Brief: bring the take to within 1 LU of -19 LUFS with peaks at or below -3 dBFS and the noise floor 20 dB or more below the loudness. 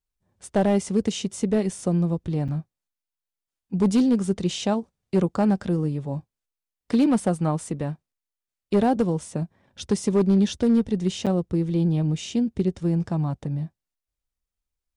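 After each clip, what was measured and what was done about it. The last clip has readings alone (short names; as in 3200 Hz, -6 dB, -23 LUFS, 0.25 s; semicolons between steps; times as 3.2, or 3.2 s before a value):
clipped 0.6%; flat tops at -13.5 dBFS; dropouts 2; longest dropout 7.1 ms; loudness -24.0 LUFS; peak -13.5 dBFS; loudness target -19.0 LUFS
-> clip repair -13.5 dBFS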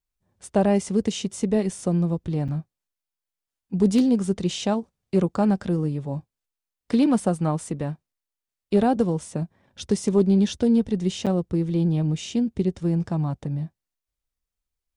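clipped 0.0%; dropouts 2; longest dropout 7.1 ms
-> interpolate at 2.48/11.26, 7.1 ms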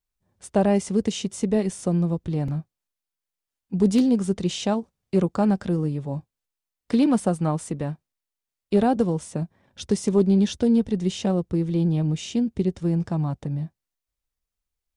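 dropouts 0; loudness -24.0 LUFS; peak -8.5 dBFS; loudness target -19.0 LUFS
-> gain +5 dB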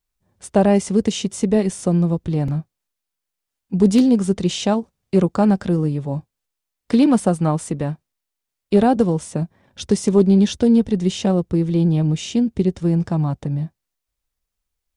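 loudness -19.0 LUFS; peak -3.5 dBFS; noise floor -82 dBFS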